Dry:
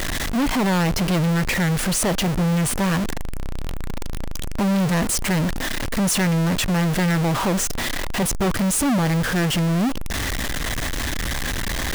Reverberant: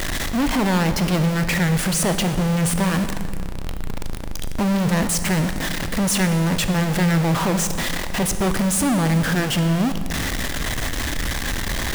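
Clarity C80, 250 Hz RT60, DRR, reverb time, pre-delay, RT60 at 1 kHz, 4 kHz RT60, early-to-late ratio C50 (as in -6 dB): 11.0 dB, 2.3 s, 9.0 dB, 2.0 s, 23 ms, 1.9 s, 1.6 s, 10.0 dB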